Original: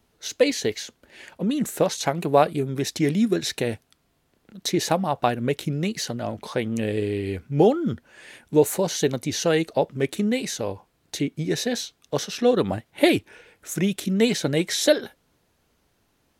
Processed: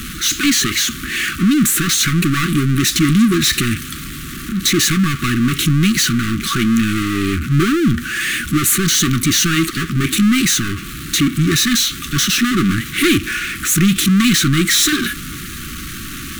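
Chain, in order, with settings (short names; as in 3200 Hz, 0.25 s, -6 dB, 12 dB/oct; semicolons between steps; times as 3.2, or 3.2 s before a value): power-law curve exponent 0.35; FFT band-reject 400–1100 Hz; thirty-one-band EQ 100 Hz -7 dB, 400 Hz -10 dB, 5000 Hz -5 dB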